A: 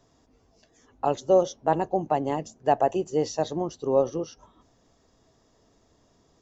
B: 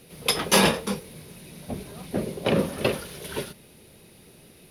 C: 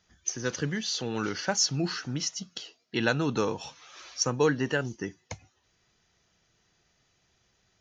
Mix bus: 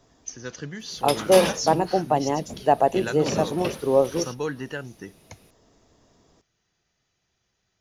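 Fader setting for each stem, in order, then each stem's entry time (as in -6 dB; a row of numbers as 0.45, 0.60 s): +3.0, -6.0, -5.0 dB; 0.00, 0.80, 0.00 s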